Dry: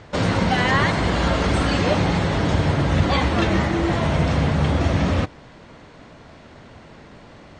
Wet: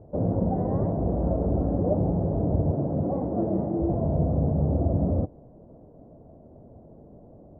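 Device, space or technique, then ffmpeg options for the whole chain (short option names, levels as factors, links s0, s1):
under water: -filter_complex "[0:a]asettb=1/sr,asplit=3[s0][s1][s2];[s0]atrim=end=2.724[s3];[s1]atrim=start=2.72:end=3.8,asetpts=PTS-STARTPTS,afade=t=in:d=0.004:c=qsin,afade=t=out:st=1.076:d=0.004:c=qsin,highpass=140[s4];[s2]atrim=start=3.796[s5];[s3][s4]acrossfade=d=0.004:c1=hsin:c2=qsin[s6];[s6][s5]acrossfade=d=0.004:c1=qsin:c2=hsin,lowpass=f=600:w=0.5412,lowpass=f=600:w=1.3066,equalizer=f=680:t=o:w=0.45:g=5.5,volume=0.631"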